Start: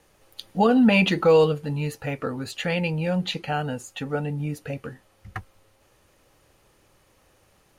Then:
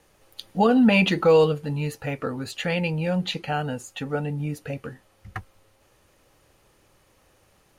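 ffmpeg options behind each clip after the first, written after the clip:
-af anull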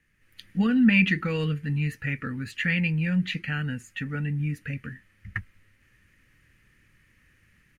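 -af "firequalizer=gain_entry='entry(220,0);entry(370,-12);entry(710,-24);entry(1800,7);entry(3600,-10)':delay=0.05:min_phase=1,dynaudnorm=f=190:g=3:m=2.51,volume=0.473"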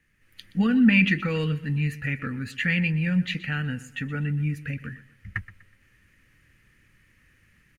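-af "aecho=1:1:123|246|369:0.141|0.0523|0.0193,volume=1.12"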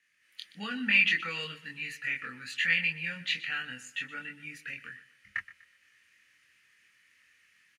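-filter_complex "[0:a]bandpass=f=4400:t=q:w=0.65:csg=0,asplit=2[s0][s1];[s1]adelay=24,volume=0.75[s2];[s0][s2]amix=inputs=2:normalize=0,volume=1.12"

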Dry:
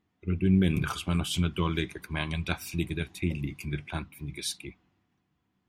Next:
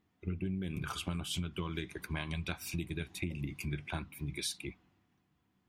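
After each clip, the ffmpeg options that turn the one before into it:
-af "acompressor=threshold=0.0224:ratio=10"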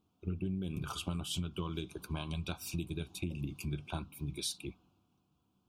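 -af "asuperstop=centerf=1900:order=4:qfactor=1.6"

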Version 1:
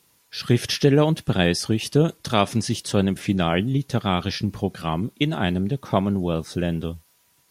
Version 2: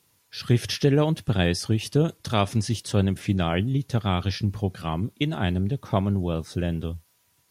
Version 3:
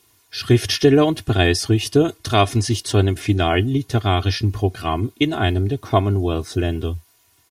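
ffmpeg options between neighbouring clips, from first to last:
-af "equalizer=f=96:w=2.2:g=8.5,volume=0.631"
-af "aecho=1:1:2.8:0.77,volume=1.88"

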